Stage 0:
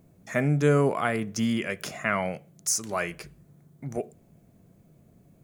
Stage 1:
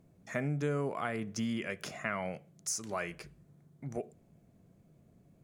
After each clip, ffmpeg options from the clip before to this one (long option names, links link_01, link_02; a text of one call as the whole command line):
ffmpeg -i in.wav -af "highshelf=frequency=12000:gain=-11,acompressor=threshold=-26dB:ratio=2.5,volume=-5.5dB" out.wav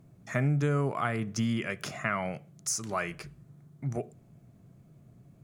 ffmpeg -i in.wav -af "equalizer=frequency=125:width_type=o:width=0.33:gain=10,equalizer=frequency=500:width_type=o:width=0.33:gain=-4,equalizer=frequency=1250:width_type=o:width=0.33:gain=4,volume=4dB" out.wav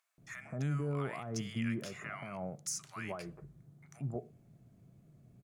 ffmpeg -i in.wav -filter_complex "[0:a]alimiter=limit=-22.5dB:level=0:latency=1:release=98,acrossover=split=1100[link_01][link_02];[link_01]adelay=180[link_03];[link_03][link_02]amix=inputs=2:normalize=0,volume=-5dB" out.wav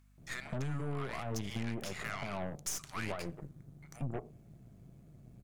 ffmpeg -i in.wav -af "acompressor=threshold=-39dB:ratio=8,aeval=exprs='0.0316*(cos(1*acos(clip(val(0)/0.0316,-1,1)))-cos(1*PI/2))+0.00447*(cos(8*acos(clip(val(0)/0.0316,-1,1)))-cos(8*PI/2))':channel_layout=same,aeval=exprs='val(0)+0.000447*(sin(2*PI*50*n/s)+sin(2*PI*2*50*n/s)/2+sin(2*PI*3*50*n/s)/3+sin(2*PI*4*50*n/s)/4+sin(2*PI*5*50*n/s)/5)':channel_layout=same,volume=4dB" out.wav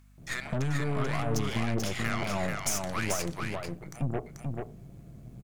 ffmpeg -i in.wav -af "aecho=1:1:437:0.631,volume=7dB" out.wav